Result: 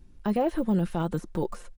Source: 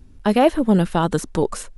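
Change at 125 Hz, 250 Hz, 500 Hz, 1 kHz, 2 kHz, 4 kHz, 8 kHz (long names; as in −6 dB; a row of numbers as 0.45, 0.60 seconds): −7.5 dB, −8.0 dB, −10.5 dB, −11.5 dB, −13.5 dB, −15.5 dB, below −15 dB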